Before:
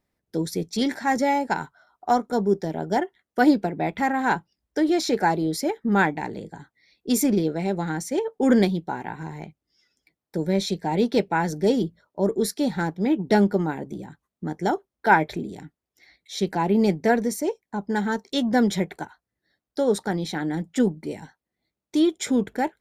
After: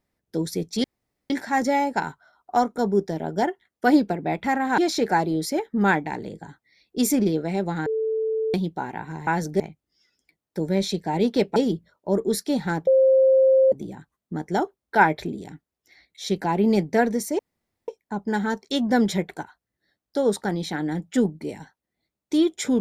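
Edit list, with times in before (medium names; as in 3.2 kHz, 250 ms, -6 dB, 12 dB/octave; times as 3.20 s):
0.84 s: insert room tone 0.46 s
4.32–4.89 s: delete
7.97–8.65 s: bleep 441 Hz -21.5 dBFS
11.34–11.67 s: move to 9.38 s
12.98–13.83 s: bleep 529 Hz -13 dBFS
17.50 s: insert room tone 0.49 s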